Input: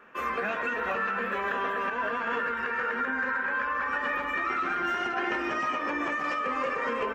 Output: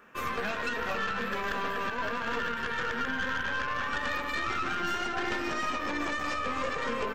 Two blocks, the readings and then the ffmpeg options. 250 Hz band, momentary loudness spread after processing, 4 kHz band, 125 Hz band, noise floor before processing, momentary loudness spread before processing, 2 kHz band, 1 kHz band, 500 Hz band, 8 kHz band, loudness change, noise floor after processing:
−0.5 dB, 1 LU, +5.0 dB, +6.5 dB, −33 dBFS, 1 LU, −2.5 dB, −3.0 dB, −2.5 dB, can't be measured, −2.5 dB, −35 dBFS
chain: -af "aeval=exprs='(tanh(14.1*val(0)+0.6)-tanh(0.6))/14.1':channel_layout=same,bass=frequency=250:gain=6,treble=frequency=4000:gain=11"

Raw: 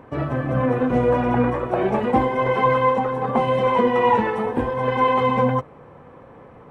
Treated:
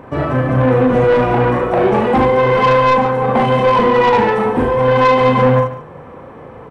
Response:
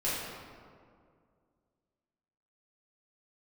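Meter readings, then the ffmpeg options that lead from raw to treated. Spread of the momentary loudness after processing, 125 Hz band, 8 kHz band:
4 LU, +8.5 dB, can't be measured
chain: -filter_complex "[0:a]asplit=2[link_01][link_02];[link_02]aecho=0:1:39|72:0.596|0.422[link_03];[link_01][link_03]amix=inputs=2:normalize=0,asoftclip=type=tanh:threshold=-14.5dB,asplit=2[link_04][link_05];[link_05]aecho=0:1:144:0.211[link_06];[link_04][link_06]amix=inputs=2:normalize=0,volume=7.5dB"

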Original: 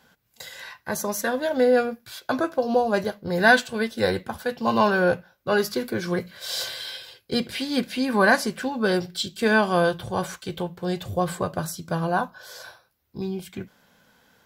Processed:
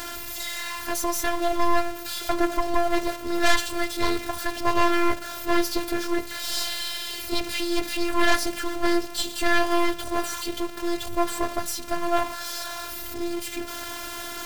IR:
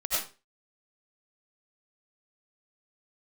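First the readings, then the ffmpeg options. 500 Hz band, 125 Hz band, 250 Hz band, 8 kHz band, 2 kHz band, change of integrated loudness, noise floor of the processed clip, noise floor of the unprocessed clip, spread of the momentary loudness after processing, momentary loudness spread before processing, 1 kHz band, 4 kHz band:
−4.5 dB, −11.0 dB, −1.0 dB, +5.0 dB, −3.5 dB, −2.0 dB, −35 dBFS, −66 dBFS, 9 LU, 16 LU, 0.0 dB, +2.5 dB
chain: -filter_complex "[0:a]aeval=exprs='val(0)+0.5*0.0596*sgn(val(0))':channel_layout=same,aeval=exprs='0.631*(cos(1*acos(clip(val(0)/0.631,-1,1)))-cos(1*PI/2))+0.00708*(cos(2*acos(clip(val(0)/0.631,-1,1)))-cos(2*PI/2))+0.126*(cos(5*acos(clip(val(0)/0.631,-1,1)))-cos(5*PI/2))+0.282*(cos(6*acos(clip(val(0)/0.631,-1,1)))-cos(6*PI/2))':channel_layout=same,asplit=2[link_01][link_02];[1:a]atrim=start_sample=2205,atrim=end_sample=3969,asetrate=29547,aresample=44100[link_03];[link_02][link_03]afir=irnorm=-1:irlink=0,volume=-29.5dB[link_04];[link_01][link_04]amix=inputs=2:normalize=0,afftfilt=real='hypot(re,im)*cos(PI*b)':imag='0':win_size=512:overlap=0.75,volume=-6.5dB"

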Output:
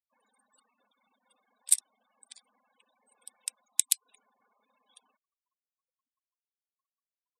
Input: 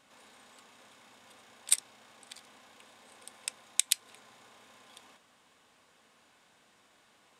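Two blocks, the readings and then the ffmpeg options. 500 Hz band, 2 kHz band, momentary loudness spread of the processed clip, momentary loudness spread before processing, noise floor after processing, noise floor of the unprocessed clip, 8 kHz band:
below −10 dB, −7.5 dB, 13 LU, 22 LU, below −85 dBFS, −66 dBFS, +2.5 dB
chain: -af "afftfilt=real='re*gte(hypot(re,im),0.00316)':imag='im*gte(hypot(re,im),0.00316)':win_size=1024:overlap=0.75,crystalizer=i=4.5:c=0,volume=-12.5dB"

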